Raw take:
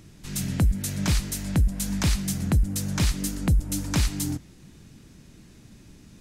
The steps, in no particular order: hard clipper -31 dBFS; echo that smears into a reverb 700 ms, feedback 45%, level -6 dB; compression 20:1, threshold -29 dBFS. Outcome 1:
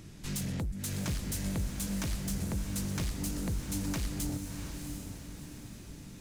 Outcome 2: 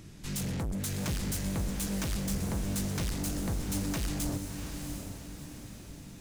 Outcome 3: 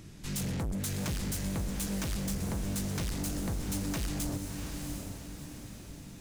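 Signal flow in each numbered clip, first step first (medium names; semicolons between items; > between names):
compression > hard clipper > echo that smears into a reverb; hard clipper > compression > echo that smears into a reverb; hard clipper > echo that smears into a reverb > compression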